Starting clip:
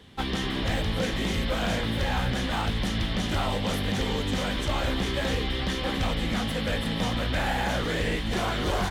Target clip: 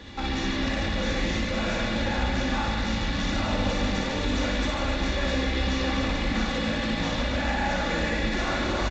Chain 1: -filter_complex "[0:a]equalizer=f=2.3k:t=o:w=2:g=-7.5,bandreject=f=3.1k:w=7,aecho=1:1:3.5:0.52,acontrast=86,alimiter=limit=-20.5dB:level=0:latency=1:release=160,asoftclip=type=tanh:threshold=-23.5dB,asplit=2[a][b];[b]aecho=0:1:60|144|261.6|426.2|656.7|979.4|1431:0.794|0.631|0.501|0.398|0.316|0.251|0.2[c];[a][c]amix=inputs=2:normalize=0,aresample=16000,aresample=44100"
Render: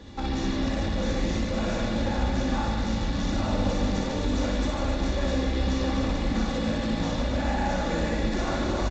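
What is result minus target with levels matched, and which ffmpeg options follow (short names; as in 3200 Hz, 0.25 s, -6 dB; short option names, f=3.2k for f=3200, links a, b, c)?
2000 Hz band -6.0 dB
-filter_complex "[0:a]equalizer=f=2.3k:t=o:w=2:g=2,bandreject=f=3.1k:w=7,aecho=1:1:3.5:0.52,acontrast=86,alimiter=limit=-20.5dB:level=0:latency=1:release=160,asoftclip=type=tanh:threshold=-23.5dB,asplit=2[a][b];[b]aecho=0:1:60|144|261.6|426.2|656.7|979.4|1431:0.794|0.631|0.501|0.398|0.316|0.251|0.2[c];[a][c]amix=inputs=2:normalize=0,aresample=16000,aresample=44100"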